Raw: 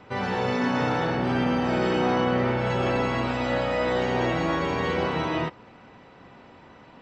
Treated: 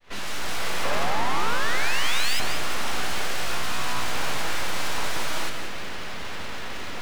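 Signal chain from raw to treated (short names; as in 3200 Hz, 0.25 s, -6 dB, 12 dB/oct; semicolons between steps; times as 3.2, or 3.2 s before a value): opening faded in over 0.76 s; 0.59–2.97 HPF 140 Hz 12 dB/oct; 0.83–2.4 painted sound rise 260–2600 Hz -21 dBFS; overdrive pedal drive 30 dB, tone 4200 Hz, clips at -19 dBFS; full-wave rectifier; lo-fi delay 0.179 s, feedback 35%, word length 8-bit, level -7.5 dB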